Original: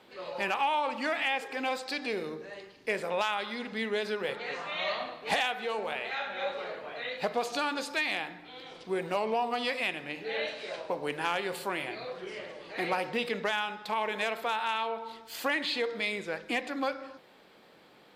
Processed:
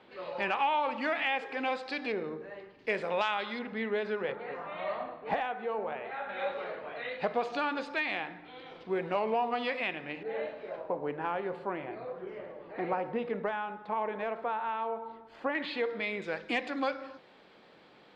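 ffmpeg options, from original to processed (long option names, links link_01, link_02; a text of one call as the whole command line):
ffmpeg -i in.wav -af "asetnsamples=nb_out_samples=441:pad=0,asendcmd='2.12 lowpass f 1900;2.79 lowpass f 3900;3.59 lowpass f 2100;4.32 lowpass f 1300;6.29 lowpass f 2600;10.23 lowpass f 1200;15.55 lowpass f 2400;16.22 lowpass f 4800',lowpass=3200" out.wav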